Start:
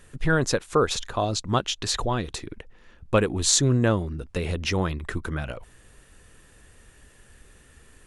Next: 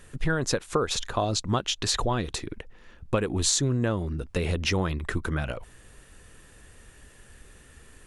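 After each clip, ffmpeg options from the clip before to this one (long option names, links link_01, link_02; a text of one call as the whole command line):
ffmpeg -i in.wav -af "acompressor=threshold=-22dB:ratio=10,volume=1.5dB" out.wav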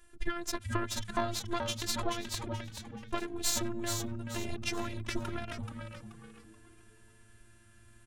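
ffmpeg -i in.wav -filter_complex "[0:a]aeval=exprs='0.447*(cos(1*acos(clip(val(0)/0.447,-1,1)))-cos(1*PI/2))+0.0251*(cos(5*acos(clip(val(0)/0.447,-1,1)))-cos(5*PI/2))+0.0708*(cos(6*acos(clip(val(0)/0.447,-1,1)))-cos(6*PI/2))+0.0355*(cos(7*acos(clip(val(0)/0.447,-1,1)))-cos(7*PI/2))':channel_layout=same,afftfilt=real='hypot(re,im)*cos(PI*b)':imag='0':win_size=512:overlap=0.75,asplit=5[link_01][link_02][link_03][link_04][link_05];[link_02]adelay=430,afreqshift=-110,volume=-5.5dB[link_06];[link_03]adelay=860,afreqshift=-220,volume=-14.9dB[link_07];[link_04]adelay=1290,afreqshift=-330,volume=-24.2dB[link_08];[link_05]adelay=1720,afreqshift=-440,volume=-33.6dB[link_09];[link_01][link_06][link_07][link_08][link_09]amix=inputs=5:normalize=0,volume=-4.5dB" out.wav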